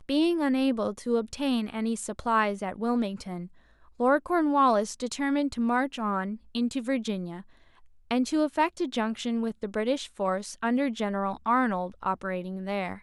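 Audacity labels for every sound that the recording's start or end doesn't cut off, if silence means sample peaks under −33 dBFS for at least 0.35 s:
4.000000	7.400000	sound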